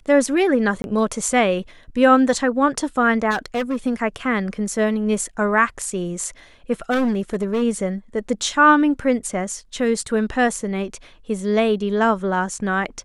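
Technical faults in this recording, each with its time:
0:00.82–0:00.84: drop-out 21 ms
0:03.30–0:03.76: clipping −18 dBFS
0:06.90–0:07.63: clipping −16.5 dBFS

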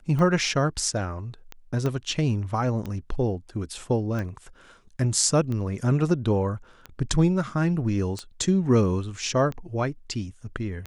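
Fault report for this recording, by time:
scratch tick 45 rpm −20 dBFS
0:01.86: click −16 dBFS

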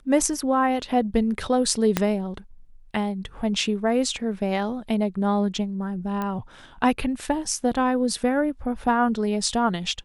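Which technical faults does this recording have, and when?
0:01.97: click −5 dBFS
0:06.22: click −16 dBFS

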